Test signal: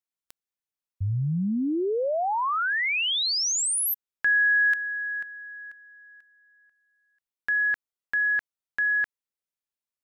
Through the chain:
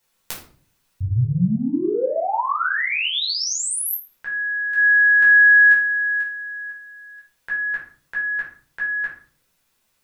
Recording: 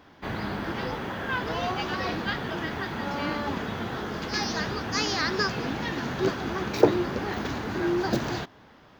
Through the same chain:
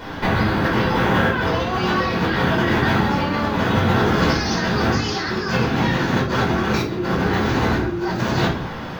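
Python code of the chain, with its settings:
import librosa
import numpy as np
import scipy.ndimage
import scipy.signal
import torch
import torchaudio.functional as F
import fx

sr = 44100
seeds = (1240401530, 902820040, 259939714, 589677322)

y = fx.over_compress(x, sr, threshold_db=-37.0, ratio=-1.0)
y = fx.room_shoebox(y, sr, seeds[0], volume_m3=450.0, walls='furnished', distance_m=4.8)
y = F.gain(torch.from_numpy(y), 7.5).numpy()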